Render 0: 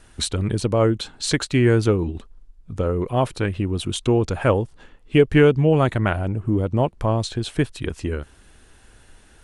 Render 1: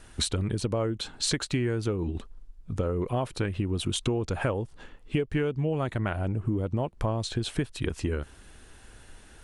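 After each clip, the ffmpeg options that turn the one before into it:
ffmpeg -i in.wav -af "acompressor=threshold=-24dB:ratio=10" out.wav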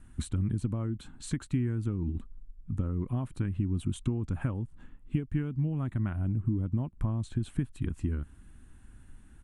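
ffmpeg -i in.wav -af "firequalizer=gain_entry='entry(260,0);entry(450,-18);entry(1100,-10);entry(5000,-22);entry(7800,-11)':delay=0.05:min_phase=1" out.wav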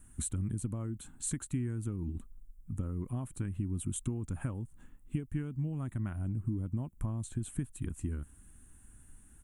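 ffmpeg -i in.wav -af "aexciter=amount=6.5:drive=3.4:freq=6600,volume=-5dB" out.wav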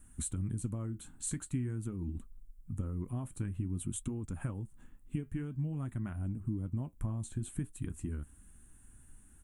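ffmpeg -i in.wav -af "flanger=delay=3.5:depth=7.7:regen=-68:speed=0.48:shape=triangular,volume=3dB" out.wav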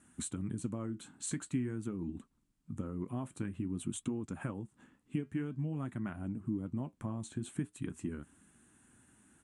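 ffmpeg -i in.wav -af "highpass=190,lowpass=6500,volume=4dB" out.wav

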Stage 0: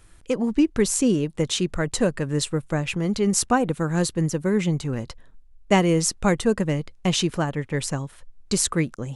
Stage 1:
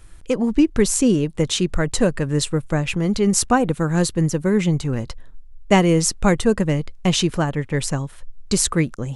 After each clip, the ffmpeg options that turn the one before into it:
ffmpeg -i in.wav -af "lowshelf=frequency=67:gain=8,volume=3dB" out.wav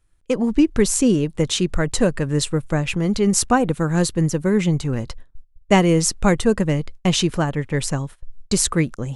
ffmpeg -i in.wav -af "agate=range=-20dB:threshold=-33dB:ratio=16:detection=peak" out.wav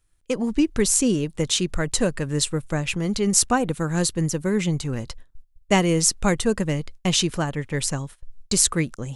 ffmpeg -i in.wav -af "highshelf=frequency=2700:gain=7,volume=-4.5dB" out.wav

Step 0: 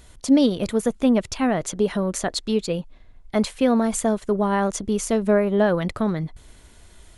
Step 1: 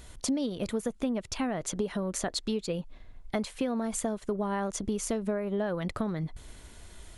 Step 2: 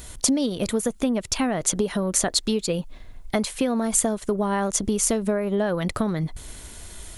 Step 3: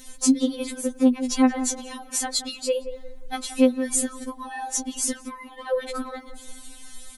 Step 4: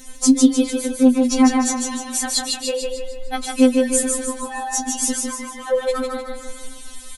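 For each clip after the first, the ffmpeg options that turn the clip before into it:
ffmpeg -i in.wav -af "acompressor=threshold=-28dB:ratio=6" out.wav
ffmpeg -i in.wav -af "highshelf=frequency=6300:gain=10.5,volume=7dB" out.wav
ffmpeg -i in.wav -filter_complex "[0:a]asplit=2[link_01][link_02];[link_02]adelay=177,lowpass=frequency=1100:poles=1,volume=-10dB,asplit=2[link_03][link_04];[link_04]adelay=177,lowpass=frequency=1100:poles=1,volume=0.36,asplit=2[link_05][link_06];[link_06]adelay=177,lowpass=frequency=1100:poles=1,volume=0.36,asplit=2[link_07][link_08];[link_08]adelay=177,lowpass=frequency=1100:poles=1,volume=0.36[link_09];[link_01][link_03][link_05][link_07][link_09]amix=inputs=5:normalize=0,afftfilt=real='re*3.46*eq(mod(b,12),0)':imag='im*3.46*eq(mod(b,12),0)':win_size=2048:overlap=0.75" out.wav
ffmpeg -i in.wav -filter_complex "[0:a]flanger=delay=7.6:depth=5.1:regen=-40:speed=0.31:shape=sinusoidal,asplit=2[link_01][link_02];[link_02]aecho=0:1:152|304|456|608|760|912:0.668|0.307|0.141|0.0651|0.0299|0.0138[link_03];[link_01][link_03]amix=inputs=2:normalize=0,volume=7.5dB" out.wav

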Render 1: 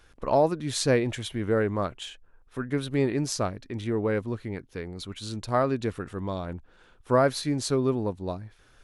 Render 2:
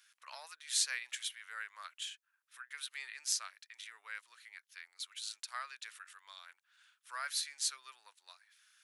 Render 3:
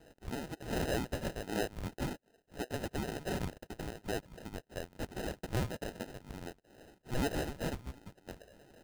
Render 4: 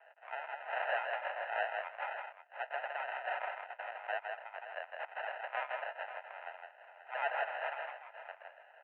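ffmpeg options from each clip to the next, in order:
ffmpeg -i in.wav -af "highpass=frequency=1500:width=0.5412,highpass=frequency=1500:width=1.3066,highshelf=frequency=5100:gain=8,volume=-6dB" out.wav
ffmpeg -i in.wav -filter_complex "[0:a]asplit=2[link_01][link_02];[link_02]highpass=frequency=720:poles=1,volume=26dB,asoftclip=type=tanh:threshold=-11.5dB[link_03];[link_01][link_03]amix=inputs=2:normalize=0,lowpass=frequency=2200:poles=1,volume=-6dB,acrusher=samples=39:mix=1:aa=0.000001,volume=-6dB" out.wav
ffmpeg -i in.wav -filter_complex "[0:a]asuperpass=centerf=1300:order=12:qfactor=0.64,asplit=2[link_01][link_02];[link_02]aecho=0:1:162|534:0.596|0.251[link_03];[link_01][link_03]amix=inputs=2:normalize=0,volume=5.5dB" out.wav

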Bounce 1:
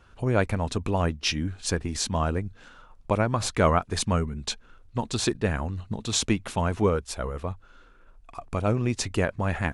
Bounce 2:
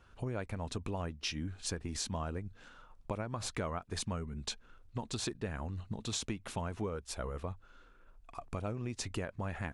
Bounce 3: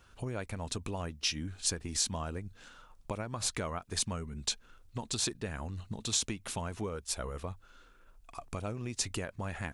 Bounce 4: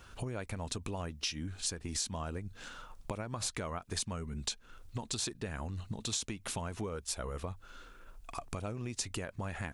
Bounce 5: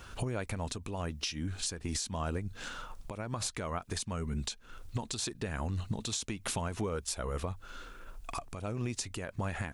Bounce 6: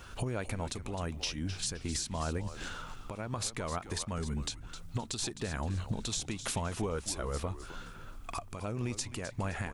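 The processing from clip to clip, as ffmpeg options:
ffmpeg -i in.wav -af "acompressor=threshold=-28dB:ratio=6,volume=-6dB" out.wav
ffmpeg -i in.wav -af "highshelf=frequency=3600:gain=10.5" out.wav
ffmpeg -i in.wav -af "acompressor=threshold=-45dB:ratio=2.5,volume=6.5dB" out.wav
ffmpeg -i in.wav -af "alimiter=level_in=5dB:limit=-24dB:level=0:latency=1:release=289,volume=-5dB,volume=5.5dB" out.wav
ffmpeg -i in.wav -filter_complex "[0:a]asplit=5[link_01][link_02][link_03][link_04][link_05];[link_02]adelay=260,afreqshift=-120,volume=-11.5dB[link_06];[link_03]adelay=520,afreqshift=-240,volume=-20.6dB[link_07];[link_04]adelay=780,afreqshift=-360,volume=-29.7dB[link_08];[link_05]adelay=1040,afreqshift=-480,volume=-38.9dB[link_09];[link_01][link_06][link_07][link_08][link_09]amix=inputs=5:normalize=0" out.wav

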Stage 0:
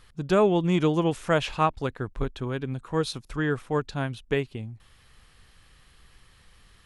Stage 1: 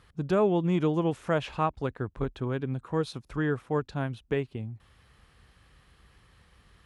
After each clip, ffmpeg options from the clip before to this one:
ffmpeg -i in.wav -filter_complex "[0:a]highpass=frequency=42:width=0.5412,highpass=frequency=42:width=1.3066,highshelf=frequency=2400:gain=-9,asplit=2[link_01][link_02];[link_02]alimiter=limit=-21.5dB:level=0:latency=1:release=386,volume=1dB[link_03];[link_01][link_03]amix=inputs=2:normalize=0,volume=-6dB" out.wav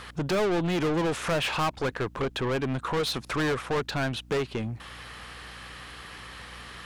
ffmpeg -i in.wav -filter_complex "[0:a]asplit=2[link_01][link_02];[link_02]acompressor=threshold=-36dB:ratio=6,volume=-2dB[link_03];[link_01][link_03]amix=inputs=2:normalize=0,asplit=2[link_04][link_05];[link_05]highpass=frequency=720:poles=1,volume=29dB,asoftclip=type=tanh:threshold=-13dB[link_06];[link_04][link_06]amix=inputs=2:normalize=0,lowpass=frequency=7600:poles=1,volume=-6dB,aeval=exprs='val(0)+0.00708*(sin(2*PI*60*n/s)+sin(2*PI*2*60*n/s)/2+sin(2*PI*3*60*n/s)/3+sin(2*PI*4*60*n/s)/4+sin(2*PI*5*60*n/s)/5)':channel_layout=same,volume=-6.5dB" out.wav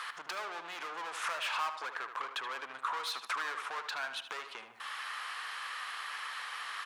ffmpeg -i in.wav -filter_complex "[0:a]acompressor=threshold=-35dB:ratio=6,highpass=frequency=1100:width_type=q:width=1.7,asplit=2[link_01][link_02];[link_02]adelay=76,lowpass=frequency=3400:poles=1,volume=-8dB,asplit=2[link_03][link_04];[link_04]adelay=76,lowpass=frequency=3400:poles=1,volume=0.48,asplit=2[link_05][link_06];[link_06]adelay=76,lowpass=frequency=3400:poles=1,volume=0.48,asplit=2[link_07][link_08];[link_08]adelay=76,lowpass=frequency=3400:poles=1,volume=0.48,asplit=2[link_09][link_10];[link_10]adelay=76,lowpass=frequency=3400:poles=1,volume=0.48,asplit=2[link_11][link_12];[link_12]adelay=76,lowpass=frequency=3400:poles=1,volume=0.48[link_13];[link_03][link_05][link_07][link_09][link_11][link_13]amix=inputs=6:normalize=0[link_14];[link_01][link_14]amix=inputs=2:normalize=0" out.wav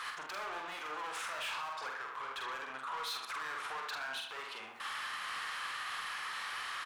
ffmpeg -i in.wav -filter_complex "[0:a]alimiter=level_in=9.5dB:limit=-24dB:level=0:latency=1:release=99,volume=-9.5dB,asoftclip=type=tanh:threshold=-38.5dB,asplit=2[link_01][link_02];[link_02]adelay=46,volume=-3.5dB[link_03];[link_01][link_03]amix=inputs=2:normalize=0,volume=3dB" out.wav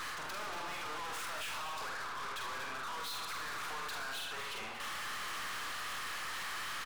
ffmpeg -i in.wav -filter_complex "[0:a]aeval=exprs='(tanh(355*val(0)+0.4)-tanh(0.4))/355':channel_layout=same,asplit=2[link_01][link_02];[link_02]aecho=0:1:235:0.335[link_03];[link_01][link_03]amix=inputs=2:normalize=0,volume=10.5dB" out.wav

